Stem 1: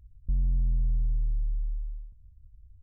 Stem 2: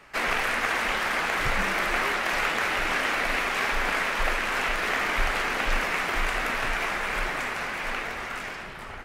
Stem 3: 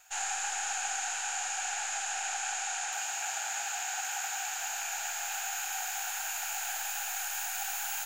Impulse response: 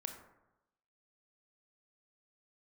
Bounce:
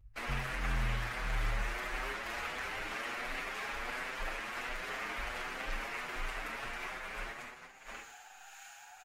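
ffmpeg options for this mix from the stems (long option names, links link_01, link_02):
-filter_complex "[0:a]aeval=exprs='0.0841*sin(PI/2*1.41*val(0)/0.0841)':channel_layout=same,volume=-8.5dB[link_01];[1:a]agate=range=-26dB:threshold=-29dB:ratio=16:detection=peak,bandreject=frequency=66.34:width_type=h:width=4,bandreject=frequency=132.68:width_type=h:width=4,bandreject=frequency=199.02:width_type=h:width=4,bandreject=frequency=265.36:width_type=h:width=4,bandreject=frequency=331.7:width_type=h:width=4,bandreject=frequency=398.04:width_type=h:width=4,bandreject=frequency=464.38:width_type=h:width=4,bandreject=frequency=530.72:width_type=h:width=4,bandreject=frequency=597.06:width_type=h:width=4,bandreject=frequency=663.4:width_type=h:width=4,bandreject=frequency=729.74:width_type=h:width=4,bandreject=frequency=796.08:width_type=h:width=4,bandreject=frequency=862.42:width_type=h:width=4,bandreject=frequency=928.76:width_type=h:width=4,bandreject=frequency=995.1:width_type=h:width=4,bandreject=frequency=1061.44:width_type=h:width=4,bandreject=frequency=1127.78:width_type=h:width=4,bandreject=frequency=1194.12:width_type=h:width=4,bandreject=frequency=1260.46:width_type=h:width=4,bandreject=frequency=1326.8:width_type=h:width=4,bandreject=frequency=1393.14:width_type=h:width=4,bandreject=frequency=1459.48:width_type=h:width=4,bandreject=frequency=1525.82:width_type=h:width=4,bandreject=frequency=1592.16:width_type=h:width=4,bandreject=frequency=1658.5:width_type=h:width=4,bandreject=frequency=1724.84:width_type=h:width=4,bandreject=frequency=1791.18:width_type=h:width=4,bandreject=frequency=1857.52:width_type=h:width=4,bandreject=frequency=1923.86:width_type=h:width=4,bandreject=frequency=1990.2:width_type=h:width=4,bandreject=frequency=2056.54:width_type=h:width=4,bandreject=frequency=2122.88:width_type=h:width=4,bandreject=frequency=2189.22:width_type=h:width=4,bandreject=frequency=2255.56:width_type=h:width=4,bandreject=frequency=2321.9:width_type=h:width=4,volume=-10dB[link_02];[2:a]acrossover=split=1100[link_03][link_04];[link_03]aeval=exprs='val(0)*(1-0.5/2+0.5/2*cos(2*PI*1.6*n/s))':channel_layout=same[link_05];[link_04]aeval=exprs='val(0)*(1-0.5/2-0.5/2*cos(2*PI*1.6*n/s))':channel_layout=same[link_06];[link_05][link_06]amix=inputs=2:normalize=0,aemphasis=mode=reproduction:type=50fm,adelay=1450,volume=-8dB,afade=type=in:start_time=7.59:duration=0.67:silence=0.266073[link_07];[link_01][link_02][link_07]amix=inputs=3:normalize=0,asplit=2[link_08][link_09];[link_09]adelay=7.1,afreqshift=1.4[link_10];[link_08][link_10]amix=inputs=2:normalize=1"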